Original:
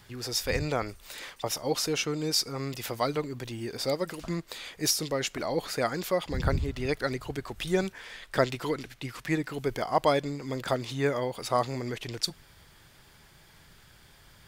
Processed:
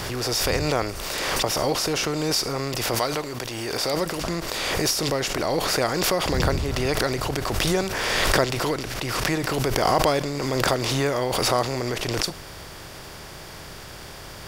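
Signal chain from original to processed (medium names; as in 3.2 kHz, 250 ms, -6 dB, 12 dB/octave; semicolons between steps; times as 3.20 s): spectral levelling over time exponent 0.6; 2.95–3.94 s: bass shelf 350 Hz -7.5 dB; swell ahead of each attack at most 22 dB/s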